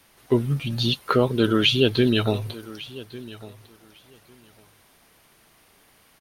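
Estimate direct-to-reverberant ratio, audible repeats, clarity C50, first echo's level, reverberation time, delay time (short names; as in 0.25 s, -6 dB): none, 2, none, -18.5 dB, none, 1.151 s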